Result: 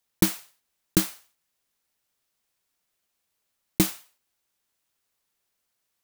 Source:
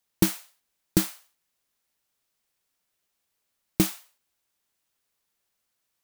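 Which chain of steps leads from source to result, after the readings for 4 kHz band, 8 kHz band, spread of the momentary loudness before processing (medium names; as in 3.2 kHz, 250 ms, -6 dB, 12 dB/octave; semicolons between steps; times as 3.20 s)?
+1.5 dB, +1.5 dB, 13 LU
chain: block-companded coder 3-bit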